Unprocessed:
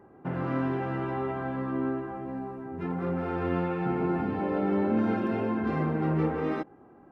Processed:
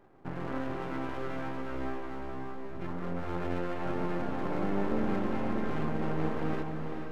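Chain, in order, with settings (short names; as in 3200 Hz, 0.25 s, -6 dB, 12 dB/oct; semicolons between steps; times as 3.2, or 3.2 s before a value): half-wave rectifier; diffused feedback echo 0.453 s, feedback 48%, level -5 dB; gain -2 dB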